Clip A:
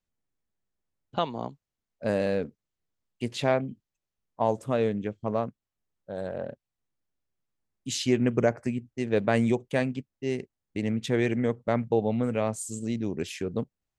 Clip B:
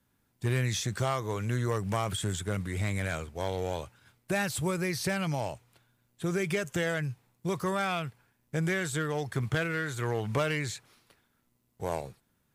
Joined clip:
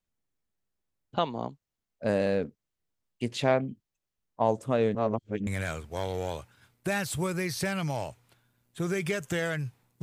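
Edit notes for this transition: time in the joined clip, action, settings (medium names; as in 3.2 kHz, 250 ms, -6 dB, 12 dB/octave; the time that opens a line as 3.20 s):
clip A
4.95–5.47 s: reverse
5.47 s: go over to clip B from 2.91 s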